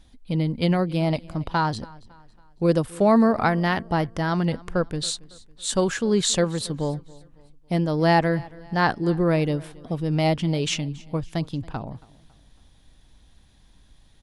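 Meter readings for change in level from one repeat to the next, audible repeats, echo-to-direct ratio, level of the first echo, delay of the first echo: -7.5 dB, 2, -21.5 dB, -22.5 dB, 277 ms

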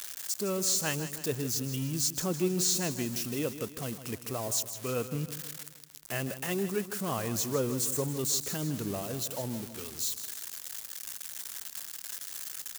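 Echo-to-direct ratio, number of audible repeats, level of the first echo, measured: -11.0 dB, 4, -12.0 dB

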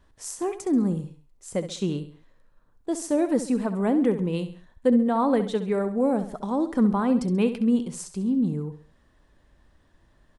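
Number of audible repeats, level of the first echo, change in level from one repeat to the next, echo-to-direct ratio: 3, -11.5 dB, -7.5 dB, -10.5 dB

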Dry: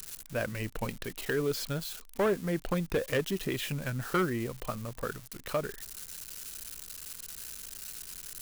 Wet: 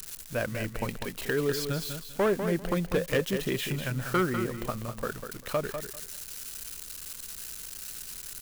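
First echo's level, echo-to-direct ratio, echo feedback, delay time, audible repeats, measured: -8.0 dB, -8.0 dB, 19%, 197 ms, 2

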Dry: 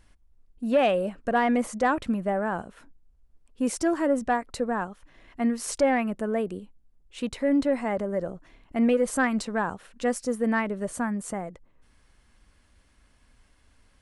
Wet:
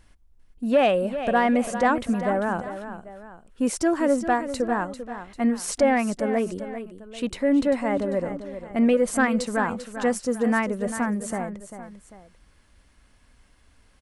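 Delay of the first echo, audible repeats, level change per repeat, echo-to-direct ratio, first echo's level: 395 ms, 2, -7.0 dB, -10.0 dB, -11.0 dB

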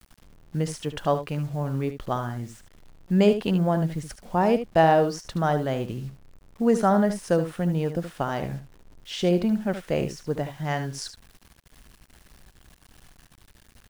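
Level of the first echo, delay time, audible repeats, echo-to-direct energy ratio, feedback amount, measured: -10.5 dB, 74 ms, 1, -10.5 dB, no regular repeats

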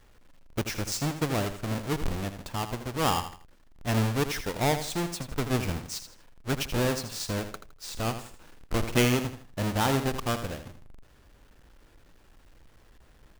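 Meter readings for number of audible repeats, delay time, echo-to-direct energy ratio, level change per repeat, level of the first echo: 3, 81 ms, -9.5 dB, -10.0 dB, -10.0 dB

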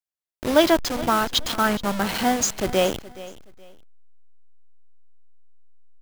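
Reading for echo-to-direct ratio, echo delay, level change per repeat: -17.5 dB, 422 ms, -11.5 dB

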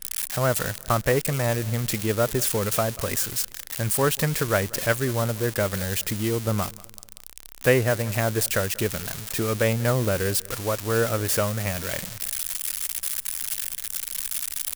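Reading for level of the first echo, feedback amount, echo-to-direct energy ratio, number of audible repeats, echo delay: -22.0 dB, 40%, -21.5 dB, 2, 189 ms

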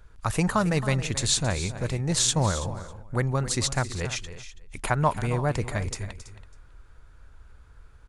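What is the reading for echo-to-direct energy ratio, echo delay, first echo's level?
-12.0 dB, 271 ms, -14.0 dB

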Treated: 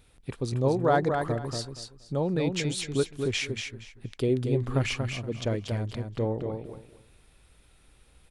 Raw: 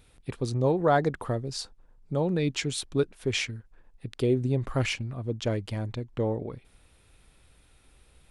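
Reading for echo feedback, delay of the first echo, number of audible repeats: 21%, 235 ms, 3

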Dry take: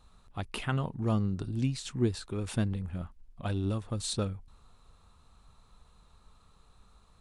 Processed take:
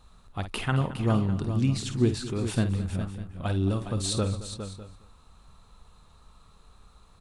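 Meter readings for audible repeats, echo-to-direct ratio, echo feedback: 6, -6.0 dB, no regular repeats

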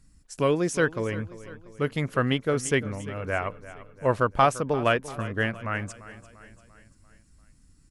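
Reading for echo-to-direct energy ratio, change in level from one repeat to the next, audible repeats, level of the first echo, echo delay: -15.0 dB, -5.5 dB, 4, -16.5 dB, 344 ms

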